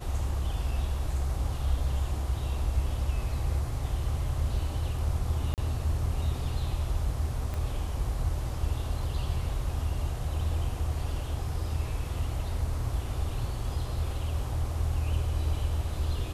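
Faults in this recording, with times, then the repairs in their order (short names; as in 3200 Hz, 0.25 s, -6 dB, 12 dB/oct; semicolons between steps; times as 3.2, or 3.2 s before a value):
5.54–5.58 gap 38 ms
7.54 pop -22 dBFS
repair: de-click; interpolate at 5.54, 38 ms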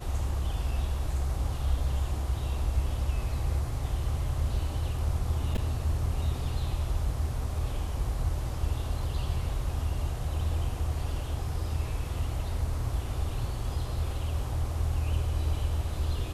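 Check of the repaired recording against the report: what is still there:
7.54 pop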